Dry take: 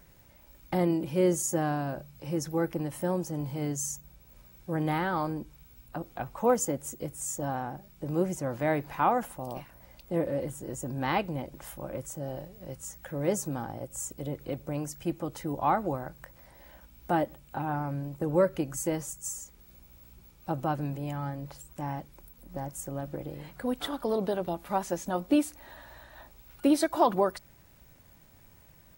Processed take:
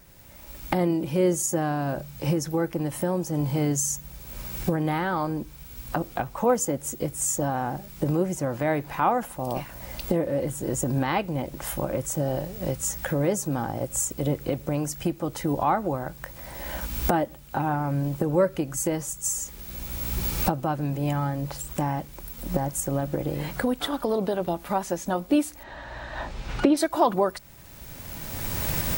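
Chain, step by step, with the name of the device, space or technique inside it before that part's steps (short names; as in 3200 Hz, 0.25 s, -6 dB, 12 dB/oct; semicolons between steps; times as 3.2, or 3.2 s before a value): cheap recorder with automatic gain (white noise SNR 33 dB; recorder AGC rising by 19 dB/s); 25.63–26.77 air absorption 130 m; gain +2.5 dB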